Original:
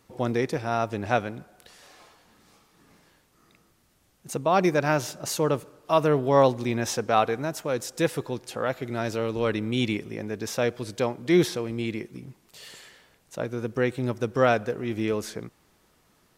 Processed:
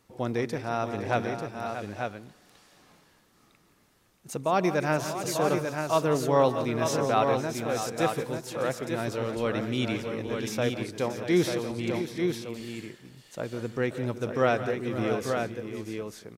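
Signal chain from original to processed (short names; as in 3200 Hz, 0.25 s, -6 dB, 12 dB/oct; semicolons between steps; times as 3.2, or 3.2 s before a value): on a send: tapped delay 0.146/0.172/0.512/0.632/0.853/0.892 s -16.5/-14/-15/-10.5/-18.5/-5.5 dB; on the sum: gain -3.5 dB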